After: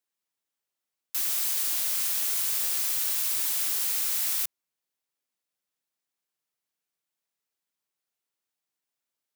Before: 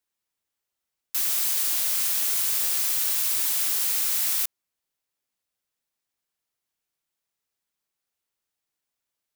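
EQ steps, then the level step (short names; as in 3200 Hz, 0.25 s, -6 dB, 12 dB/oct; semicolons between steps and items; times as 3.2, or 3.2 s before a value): HPF 130 Hz 12 dB/oct; -3.0 dB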